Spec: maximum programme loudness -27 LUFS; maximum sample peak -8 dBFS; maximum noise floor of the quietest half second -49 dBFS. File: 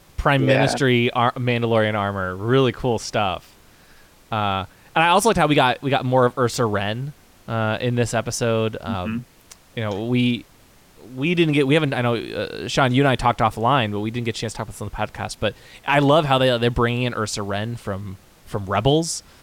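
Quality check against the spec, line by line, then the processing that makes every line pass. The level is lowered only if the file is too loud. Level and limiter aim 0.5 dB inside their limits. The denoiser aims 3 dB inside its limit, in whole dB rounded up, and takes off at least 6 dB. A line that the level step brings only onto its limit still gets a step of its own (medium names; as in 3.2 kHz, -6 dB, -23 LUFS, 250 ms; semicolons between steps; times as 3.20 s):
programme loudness -20.5 LUFS: fail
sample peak -5.0 dBFS: fail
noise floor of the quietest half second -52 dBFS: pass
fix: trim -7 dB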